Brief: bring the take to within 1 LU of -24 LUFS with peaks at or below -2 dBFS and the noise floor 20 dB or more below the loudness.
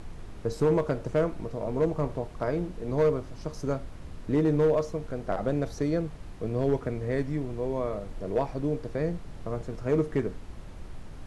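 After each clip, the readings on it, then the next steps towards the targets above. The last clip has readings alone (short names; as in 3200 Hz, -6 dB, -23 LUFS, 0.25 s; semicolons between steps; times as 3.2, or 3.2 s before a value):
clipped 0.5%; flat tops at -17.0 dBFS; noise floor -43 dBFS; noise floor target -50 dBFS; loudness -29.5 LUFS; peak -17.0 dBFS; loudness target -24.0 LUFS
-> clip repair -17 dBFS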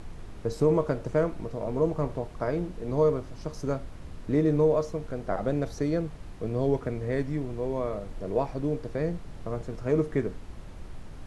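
clipped 0.0%; noise floor -43 dBFS; noise floor target -49 dBFS
-> noise print and reduce 6 dB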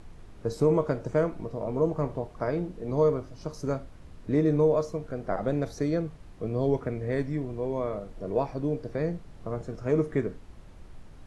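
noise floor -48 dBFS; noise floor target -50 dBFS
-> noise print and reduce 6 dB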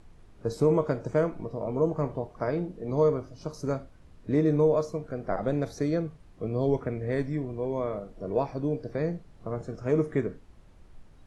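noise floor -54 dBFS; loudness -29.5 LUFS; peak -11.5 dBFS; loudness target -24.0 LUFS
-> gain +5.5 dB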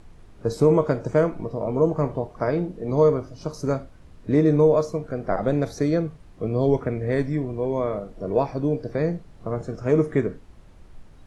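loudness -24.0 LUFS; peak -6.0 dBFS; noise floor -48 dBFS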